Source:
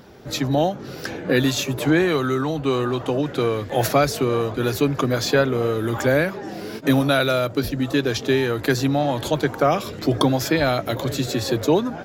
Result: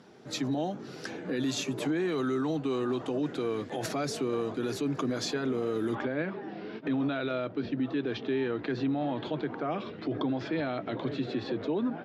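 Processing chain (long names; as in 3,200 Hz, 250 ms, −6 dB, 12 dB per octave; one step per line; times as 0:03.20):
low-pass filter 10,000 Hz 24 dB per octave, from 0:05.95 3,500 Hz
dynamic equaliser 280 Hz, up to +5 dB, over −30 dBFS, Q 0.98
Chebyshev high-pass filter 180 Hz, order 2
brickwall limiter −15 dBFS, peak gain reduction 11 dB
notch filter 550 Hz, Q 12
level −7.5 dB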